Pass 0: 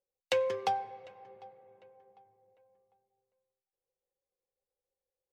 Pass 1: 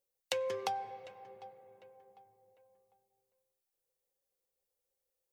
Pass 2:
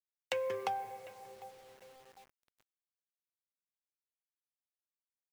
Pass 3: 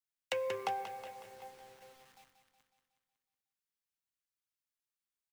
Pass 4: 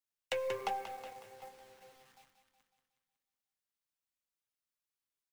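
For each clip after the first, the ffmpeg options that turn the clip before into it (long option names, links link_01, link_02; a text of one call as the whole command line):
ffmpeg -i in.wav -af "highshelf=frequency=6400:gain=10.5,acompressor=threshold=-32dB:ratio=6" out.wav
ffmpeg -i in.wav -af "highshelf=frequency=3100:width_type=q:width=1.5:gain=-6,acrusher=bits=9:mix=0:aa=0.000001" out.wav
ffmpeg -i in.wav -filter_complex "[0:a]aecho=1:1:184|368|552|736|920|1104|1288:0.355|0.199|0.111|0.0623|0.0349|0.0195|0.0109,acrossover=split=340|790|2400[link_01][link_02][link_03][link_04];[link_02]aeval=exprs='sgn(val(0))*max(abs(val(0))-0.00106,0)':channel_layout=same[link_05];[link_01][link_05][link_03][link_04]amix=inputs=4:normalize=0" out.wav
ffmpeg -i in.wav -filter_complex "[0:a]flanger=delay=3.2:depth=5.2:regen=-51:speed=1.2:shape=sinusoidal,asplit=2[link_01][link_02];[link_02]acrusher=bits=5:dc=4:mix=0:aa=0.000001,volume=-12dB[link_03];[link_01][link_03]amix=inputs=2:normalize=0,volume=2.5dB" out.wav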